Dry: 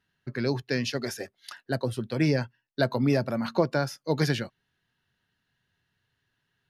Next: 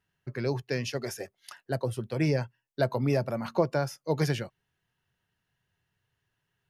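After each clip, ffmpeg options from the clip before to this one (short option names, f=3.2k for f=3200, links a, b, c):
-af "equalizer=f=250:t=o:w=0.67:g=-7,equalizer=f=1.6k:t=o:w=0.67:g=-5,equalizer=f=4k:t=o:w=0.67:g=-8"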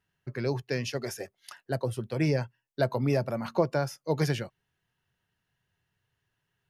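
-af anull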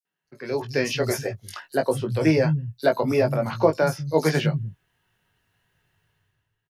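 -filter_complex "[0:a]dynaudnorm=f=100:g=11:m=14dB,asplit=2[a][b];[b]adelay=19,volume=-5dB[c];[a][c]amix=inputs=2:normalize=0,acrossover=split=170|5400[d][e][f];[e]adelay=50[g];[d]adelay=240[h];[h][g][f]amix=inputs=3:normalize=0,volume=-4.5dB"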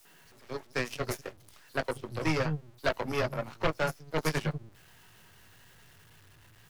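-filter_complex "[0:a]aeval=exprs='val(0)+0.5*0.0944*sgn(val(0))':c=same,aeval=exprs='0.596*(cos(1*acos(clip(val(0)/0.596,-1,1)))-cos(1*PI/2))+0.299*(cos(2*acos(clip(val(0)/0.596,-1,1)))-cos(2*PI/2))+0.0473*(cos(4*acos(clip(val(0)/0.596,-1,1)))-cos(4*PI/2))+0.0944*(cos(7*acos(clip(val(0)/0.596,-1,1)))-cos(7*PI/2))':c=same,acrossover=split=130|900|5300[a][b][c][d];[b]asoftclip=type=tanh:threshold=-22dB[e];[a][e][c][d]amix=inputs=4:normalize=0,volume=-6dB"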